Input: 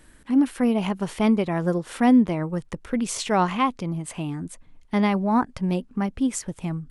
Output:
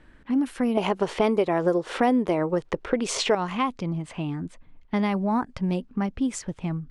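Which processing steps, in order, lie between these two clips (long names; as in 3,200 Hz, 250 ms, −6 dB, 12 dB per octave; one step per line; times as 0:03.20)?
low-pass that shuts in the quiet parts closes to 2,800 Hz, open at −15.5 dBFS
0:00.77–0:03.35: drawn EQ curve 220 Hz 0 dB, 400 Hz +13 dB, 1,700 Hz +7 dB
downward compressor 3 to 1, threshold −21 dBFS, peak gain reduction 10.5 dB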